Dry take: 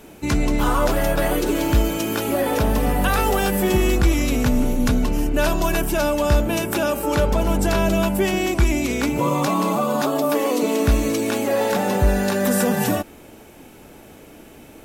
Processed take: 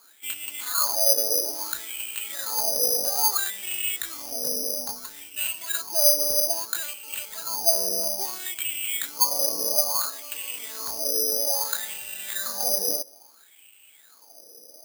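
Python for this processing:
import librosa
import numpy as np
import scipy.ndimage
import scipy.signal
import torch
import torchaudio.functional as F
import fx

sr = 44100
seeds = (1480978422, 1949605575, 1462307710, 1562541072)

y = fx.wah_lfo(x, sr, hz=0.6, low_hz=480.0, high_hz=2800.0, q=8.0)
y = (np.kron(y[::8], np.eye(8)[0]) * 8)[:len(y)]
y = F.gain(torch.from_numpy(y), -1.0).numpy()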